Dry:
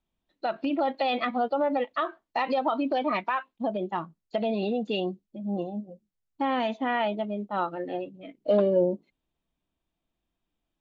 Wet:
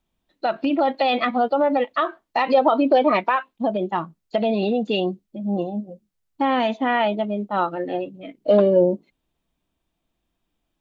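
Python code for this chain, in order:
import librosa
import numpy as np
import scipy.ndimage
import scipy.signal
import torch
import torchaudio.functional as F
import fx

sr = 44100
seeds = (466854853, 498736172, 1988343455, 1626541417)

y = fx.peak_eq(x, sr, hz=480.0, db=6.5, octaves=1.0, at=(2.54, 3.36))
y = y * 10.0 ** (6.5 / 20.0)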